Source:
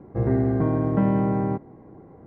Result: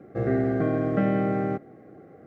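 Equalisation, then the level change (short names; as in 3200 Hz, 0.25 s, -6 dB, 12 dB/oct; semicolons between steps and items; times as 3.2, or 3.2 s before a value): HPF 98 Hz; Butterworth band-stop 950 Hz, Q 2.3; low shelf 470 Hz -11.5 dB; +6.5 dB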